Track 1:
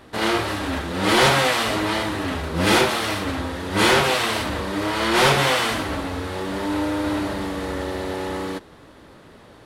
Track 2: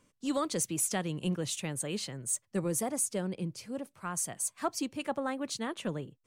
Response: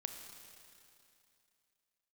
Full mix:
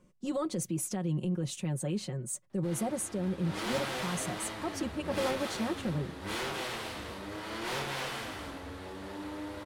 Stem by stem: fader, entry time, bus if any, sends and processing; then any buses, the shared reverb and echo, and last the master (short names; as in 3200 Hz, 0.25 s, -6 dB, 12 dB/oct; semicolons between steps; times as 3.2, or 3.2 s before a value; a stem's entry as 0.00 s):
3.14 s -24 dB -> 3.48 s -16 dB, 2.50 s, no send, echo send -6.5 dB, one-sided clip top -23.5 dBFS
-1.0 dB, 0.00 s, no send, no echo send, tilt shelf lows +6.5 dB, about 890 Hz; comb 5.5 ms, depth 72%; limiter -24 dBFS, peak gain reduction 11 dB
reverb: off
echo: echo 0.256 s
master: dry